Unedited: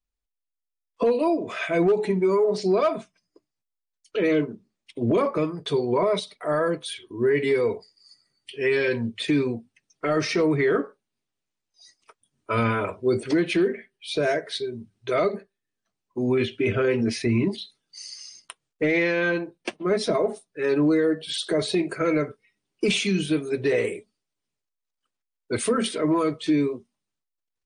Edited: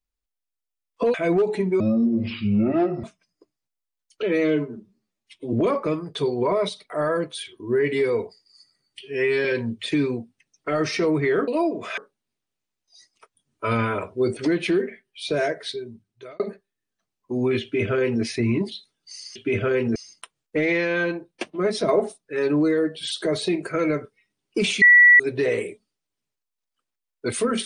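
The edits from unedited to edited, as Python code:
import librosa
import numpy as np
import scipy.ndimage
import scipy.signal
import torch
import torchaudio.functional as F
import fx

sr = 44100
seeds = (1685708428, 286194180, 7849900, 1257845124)

y = fx.edit(x, sr, fx.move(start_s=1.14, length_s=0.5, to_s=10.84),
    fx.speed_span(start_s=2.3, length_s=0.68, speed=0.55),
    fx.stretch_span(start_s=4.17, length_s=0.87, factor=1.5),
    fx.stretch_span(start_s=8.52, length_s=0.29, factor=1.5),
    fx.fade_out_span(start_s=14.47, length_s=0.79),
    fx.duplicate(start_s=16.49, length_s=0.6, to_s=18.22),
    fx.clip_gain(start_s=20.15, length_s=0.29, db=3.5),
    fx.bleep(start_s=23.08, length_s=0.38, hz=1950.0, db=-8.5), tone=tone)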